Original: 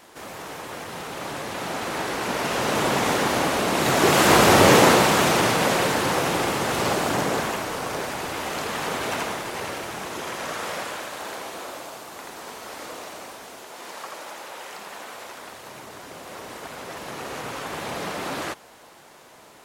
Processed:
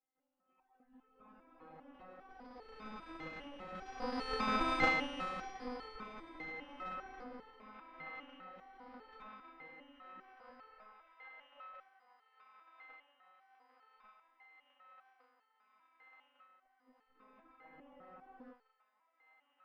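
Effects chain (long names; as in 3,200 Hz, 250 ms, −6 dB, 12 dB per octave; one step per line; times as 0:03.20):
adaptive Wiener filter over 9 samples
noise reduction from a noise print of the clip's start 23 dB
high-pass filter 58 Hz 24 dB per octave
mains-hum notches 50/100/150 Hz
phases set to zero 308 Hz
harmonic generator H 2 −30 dB, 3 −7 dB, 5 −31 dB, 6 −21 dB, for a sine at 0.5 dBFS
phase-vocoder pitch shift with formants kept −3 semitones
head-to-tape spacing loss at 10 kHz 43 dB
on a send: delay with a band-pass on its return 1,152 ms, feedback 80%, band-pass 1,500 Hz, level −16 dB
on the sum: step-sequenced resonator 5 Hz 160–440 Hz
level +13 dB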